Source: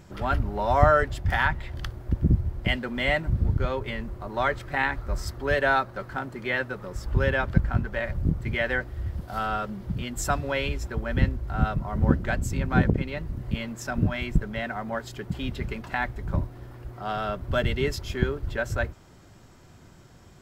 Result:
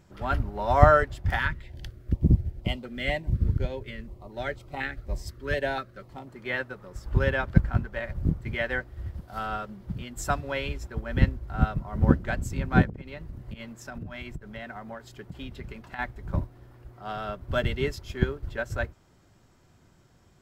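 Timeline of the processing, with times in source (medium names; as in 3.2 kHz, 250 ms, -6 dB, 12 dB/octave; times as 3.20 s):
1.39–6.27 s: step-sequenced notch 4.1 Hz 780–1700 Hz
12.85–15.99 s: compression 10:1, threshold -27 dBFS
whole clip: upward expansion 1.5:1, over -36 dBFS; trim +3 dB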